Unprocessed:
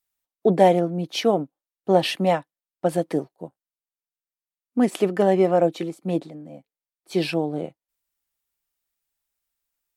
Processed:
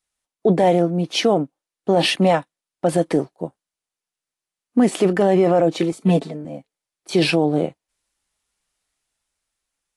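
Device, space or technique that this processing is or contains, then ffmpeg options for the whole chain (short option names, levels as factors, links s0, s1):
low-bitrate web radio: -filter_complex "[0:a]asettb=1/sr,asplit=3[s0][s1][s2];[s0]atrim=end=5.924[s3];[s1]atrim=start=5.92:end=6.45,asetpts=PTS-STARTPTS,afade=t=in:d=0.004:c=qsin,afade=t=out:st=0.526:d=0.004:c=qsin,aecho=1:1:4.6:0.83,atrim=end_sample=23373[s4];[s2]atrim=start=6.446[s5];[s3][s4]acrossfade=d=0.004:c1=hsin:c2=qsin[s6];[s6][s5]acrossfade=d=0.004:c1=qsin:c2=hsin,dynaudnorm=f=180:g=11:m=1.58,alimiter=limit=0.237:level=0:latency=1:release=15,volume=1.78" -ar 24000 -c:a aac -b:a 48k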